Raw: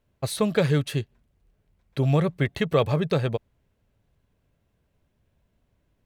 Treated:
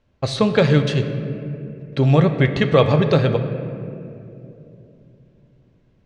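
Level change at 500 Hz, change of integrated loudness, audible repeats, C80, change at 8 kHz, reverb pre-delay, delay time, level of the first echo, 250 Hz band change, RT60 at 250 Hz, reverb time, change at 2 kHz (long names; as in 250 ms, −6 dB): +7.5 dB, +6.5 dB, no echo audible, 9.5 dB, can't be measured, 4 ms, no echo audible, no echo audible, +7.5 dB, 4.1 s, 2.9 s, +7.5 dB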